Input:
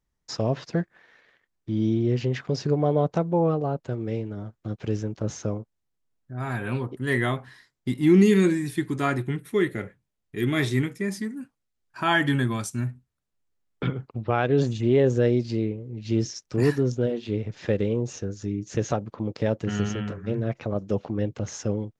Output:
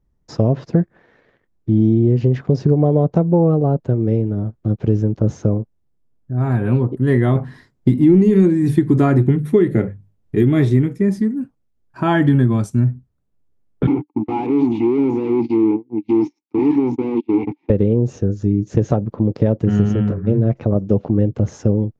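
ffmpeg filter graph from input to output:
-filter_complex "[0:a]asettb=1/sr,asplit=3[s0][s1][s2];[s0]atrim=end=7.354[s3];[s1]atrim=start=7.35:end=10.43,asetpts=PTS-STARTPTS,afade=t=in:d=0.004:c=qsin,afade=t=out:st=3.076:d=0.004:c=qsin,bandreject=f=50:t=h:w=6,bandreject=f=100:t=h:w=6,bandreject=f=150:t=h:w=6,bandreject=f=200:t=h:w=6,bandreject=f=250:t=h:w=6,acontrast=54,tremolo=f=3.7:d=0.31[s4];[s2]atrim=start=10.426[s5];[s3][s4]acrossfade=d=0.004:c1=hsin:c2=qsin[s6];[s6][s5]acrossfade=d=0.004:c1=qsin:c2=hsin,asettb=1/sr,asplit=3[s7][s8][s9];[s7]atrim=end=13.874[s10];[s8]atrim=start=13.87:end=17.7,asetpts=PTS-STARTPTS,afade=t=in:d=0.004:c=qsin,afade=t=out:st=3.826:d=0.004:c=qsin,agate=range=0.01:threshold=0.0224:ratio=16:release=100:detection=peak,asplit=2[s11][s12];[s12]highpass=f=720:p=1,volume=100,asoftclip=type=tanh:threshold=0.355[s13];[s11][s13]amix=inputs=2:normalize=0,lowpass=f=5000:p=1,volume=0.501,asplit=3[s14][s15][s16];[s14]bandpass=f=300:t=q:w=8,volume=1[s17];[s15]bandpass=f=870:t=q:w=8,volume=0.501[s18];[s16]bandpass=f=2240:t=q:w=8,volume=0.355[s19];[s17][s18][s19]amix=inputs=3:normalize=0[s20];[s9]atrim=start=17.696[s21];[s10][s20]acrossfade=d=0.004:c1=hsin:c2=qsin[s22];[s22][s21]acrossfade=d=0.004:c1=qsin:c2=hsin,tiltshelf=f=930:g=10,acompressor=threshold=0.2:ratio=6,volume=1.68"

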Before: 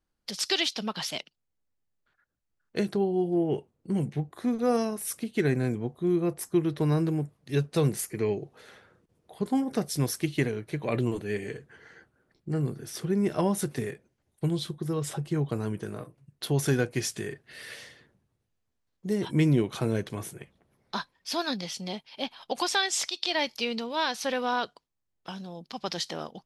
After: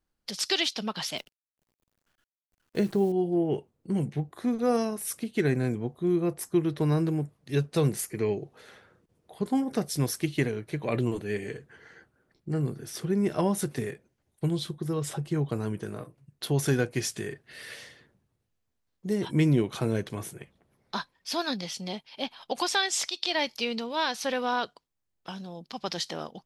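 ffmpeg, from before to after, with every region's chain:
-filter_complex "[0:a]asettb=1/sr,asplit=3[s0][s1][s2];[s0]atrim=end=1.174[s3];[s1]atrim=start=1.17:end=3.12,asetpts=PTS-STARTPTS,afade=t=in:d=0.004:c=qsin,afade=t=out:st=1.946:d=0.004:c=qsin,tiltshelf=f=670:g=3,acrusher=bits=9:dc=4:mix=0:aa=0.000001[s4];[s2]atrim=start=3.116[s5];[s3][s4]acrossfade=d=0.004:c1=hsin:c2=qsin[s6];[s6][s5]acrossfade=d=0.004:c1=qsin:c2=hsin"

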